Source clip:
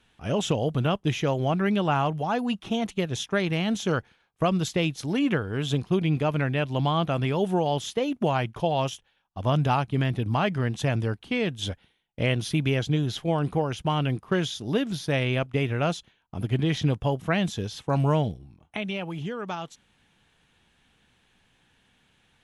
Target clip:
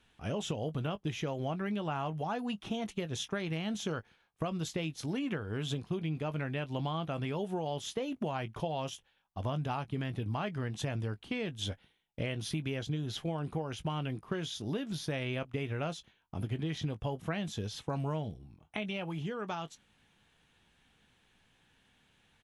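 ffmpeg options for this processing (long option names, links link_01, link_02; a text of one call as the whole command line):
ffmpeg -i in.wav -filter_complex "[0:a]asplit=2[link_01][link_02];[link_02]adelay=19,volume=-13dB[link_03];[link_01][link_03]amix=inputs=2:normalize=0,acompressor=threshold=-28dB:ratio=5,volume=-4dB" out.wav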